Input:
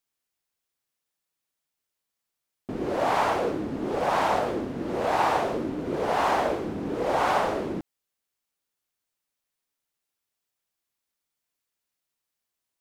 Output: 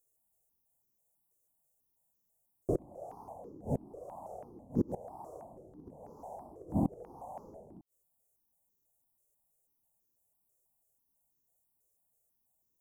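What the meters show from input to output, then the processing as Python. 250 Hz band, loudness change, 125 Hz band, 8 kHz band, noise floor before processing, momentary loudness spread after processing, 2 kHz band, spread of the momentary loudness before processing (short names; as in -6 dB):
-7.5 dB, -13.5 dB, -2.5 dB, under -20 dB, -85 dBFS, 19 LU, under -40 dB, 8 LU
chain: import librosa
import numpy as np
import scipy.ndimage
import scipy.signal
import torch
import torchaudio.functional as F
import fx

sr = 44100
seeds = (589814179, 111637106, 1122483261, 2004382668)

y = scipy.signal.sosfilt(scipy.signal.cheby2(4, 60, [1700.0, 3500.0], 'bandstop', fs=sr, output='sos'), x)
y = fx.gate_flip(y, sr, shuts_db=-22.0, range_db=-27)
y = fx.phaser_held(y, sr, hz=6.1, low_hz=850.0, high_hz=2600.0)
y = F.gain(torch.from_numpy(y), 9.0).numpy()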